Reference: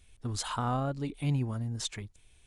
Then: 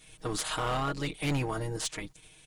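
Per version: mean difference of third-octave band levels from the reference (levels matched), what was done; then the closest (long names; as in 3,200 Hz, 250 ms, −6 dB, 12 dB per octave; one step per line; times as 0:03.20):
9.0 dB: ceiling on every frequency bin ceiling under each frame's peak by 19 dB
comb filter 6.4 ms, depth 83%
gain into a clipping stage and back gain 25.5 dB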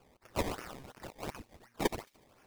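12.5 dB: elliptic band-pass filter 1,800–5,600 Hz
sample-and-hold swept by an LFO 22×, swing 100% 2.8 Hz
on a send: delay with a high-pass on its return 73 ms, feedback 61%, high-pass 2,800 Hz, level −20 dB
on the sum: level +7.5 dB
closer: first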